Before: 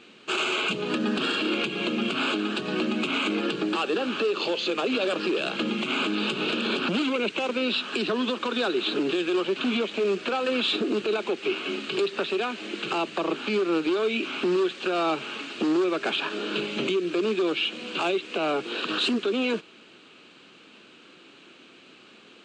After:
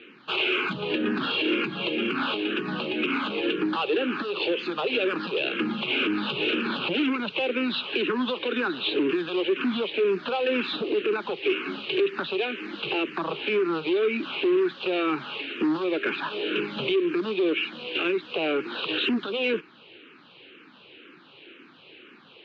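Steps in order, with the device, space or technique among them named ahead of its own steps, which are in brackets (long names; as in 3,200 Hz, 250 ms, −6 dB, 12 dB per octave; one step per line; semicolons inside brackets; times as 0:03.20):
barber-pole phaser into a guitar amplifier (frequency shifter mixed with the dry sound −2 Hz; soft clipping −21 dBFS, distortion −20 dB; loudspeaker in its box 81–3,600 Hz, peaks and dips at 210 Hz −6 dB, 670 Hz −7 dB, 1,200 Hz −3 dB)
level +5.5 dB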